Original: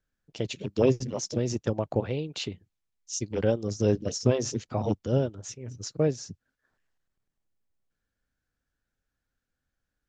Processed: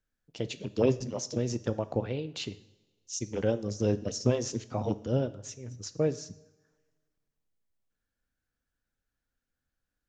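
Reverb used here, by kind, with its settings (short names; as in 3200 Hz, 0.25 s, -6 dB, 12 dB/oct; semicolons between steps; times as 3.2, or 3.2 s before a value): two-slope reverb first 0.67 s, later 1.7 s, from -16 dB, DRR 13 dB; gain -3 dB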